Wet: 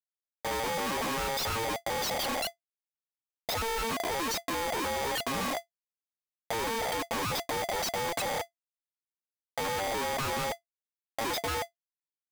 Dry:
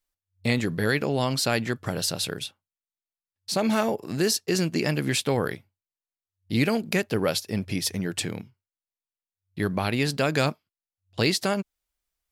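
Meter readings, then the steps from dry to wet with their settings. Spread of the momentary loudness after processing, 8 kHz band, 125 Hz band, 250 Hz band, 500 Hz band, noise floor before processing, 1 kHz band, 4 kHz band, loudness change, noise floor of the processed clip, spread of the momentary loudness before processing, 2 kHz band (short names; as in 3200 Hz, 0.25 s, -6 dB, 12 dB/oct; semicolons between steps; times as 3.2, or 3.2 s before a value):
6 LU, -4.0 dB, -14.5 dB, -13.0 dB, -6.0 dB, under -85 dBFS, +2.0 dB, -4.5 dB, -5.5 dB, under -85 dBFS, 8 LU, -4.5 dB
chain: loudest bins only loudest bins 4; Schmitt trigger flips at -40 dBFS; polarity switched at an audio rate 680 Hz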